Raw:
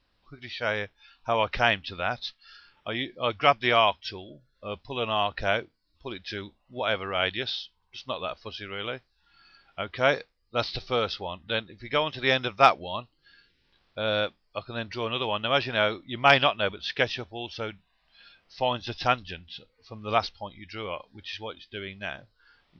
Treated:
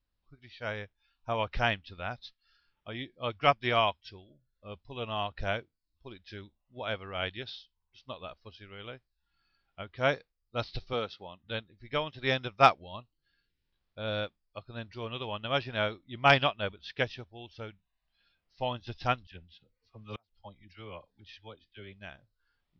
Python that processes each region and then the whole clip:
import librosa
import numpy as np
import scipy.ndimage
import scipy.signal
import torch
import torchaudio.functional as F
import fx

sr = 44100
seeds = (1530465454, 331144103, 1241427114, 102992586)

y = fx.chain(x, sr, fx.highpass(hz=140.0, slope=12),
    fx.notch(hz=5000.0, q=14.0), at=(10.93, 11.43))
y = fx.chain(y, sr, fx.dispersion(late='lows', ms=42.0, hz=1100.0),
    fx.gate_flip(shuts_db=-19.0, range_db=-34), at=(19.27, 21.93))
y = fx.low_shelf(y, sr, hz=160.0, db=11.0)
y = fx.upward_expand(y, sr, threshold_db=-45.0, expansion=1.5)
y = F.gain(torch.from_numpy(y), -2.5).numpy()